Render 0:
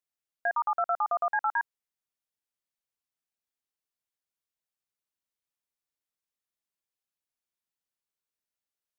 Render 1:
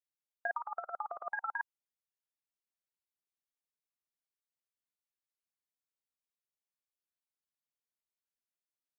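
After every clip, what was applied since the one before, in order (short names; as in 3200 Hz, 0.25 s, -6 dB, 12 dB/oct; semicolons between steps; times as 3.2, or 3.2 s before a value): harmonic-percussive split harmonic -17 dB; gain -4 dB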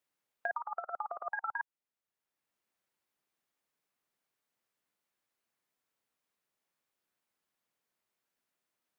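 three-band squash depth 40%; gain +1 dB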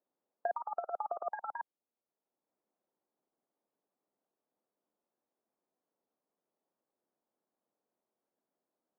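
Butterworth band-pass 400 Hz, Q 0.67; gain +6 dB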